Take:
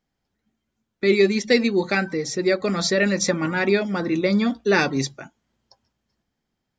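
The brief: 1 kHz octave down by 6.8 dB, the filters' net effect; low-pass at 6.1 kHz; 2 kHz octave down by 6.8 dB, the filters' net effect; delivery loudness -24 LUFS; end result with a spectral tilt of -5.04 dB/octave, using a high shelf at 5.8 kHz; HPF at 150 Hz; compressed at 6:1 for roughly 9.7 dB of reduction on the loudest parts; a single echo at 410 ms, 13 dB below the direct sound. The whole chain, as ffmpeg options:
-af "highpass=150,lowpass=6100,equalizer=f=1000:t=o:g=-8,equalizer=f=2000:t=o:g=-5,highshelf=f=5800:g=-7,acompressor=threshold=0.0562:ratio=6,aecho=1:1:410:0.224,volume=1.88"

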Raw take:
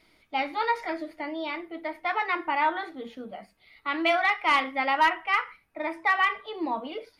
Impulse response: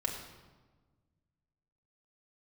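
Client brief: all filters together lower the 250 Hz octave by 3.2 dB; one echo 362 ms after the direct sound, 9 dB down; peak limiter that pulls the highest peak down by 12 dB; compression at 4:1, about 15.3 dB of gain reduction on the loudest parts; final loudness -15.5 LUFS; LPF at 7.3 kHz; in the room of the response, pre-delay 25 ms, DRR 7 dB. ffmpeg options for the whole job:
-filter_complex "[0:a]lowpass=7300,equalizer=f=250:t=o:g=-4.5,acompressor=threshold=0.0141:ratio=4,alimiter=level_in=4.47:limit=0.0631:level=0:latency=1,volume=0.224,aecho=1:1:362:0.355,asplit=2[s0][s1];[1:a]atrim=start_sample=2205,adelay=25[s2];[s1][s2]afir=irnorm=-1:irlink=0,volume=0.282[s3];[s0][s3]amix=inputs=2:normalize=0,volume=28.2"

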